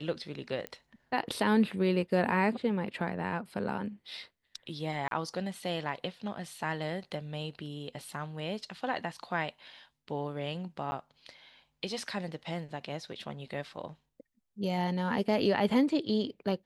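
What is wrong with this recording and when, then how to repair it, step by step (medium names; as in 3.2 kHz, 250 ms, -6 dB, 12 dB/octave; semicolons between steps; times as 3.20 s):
0.67 s: pop -23 dBFS
5.08–5.11 s: dropout 32 ms
10.91–10.92 s: dropout 10 ms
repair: de-click; interpolate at 5.08 s, 32 ms; interpolate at 10.91 s, 10 ms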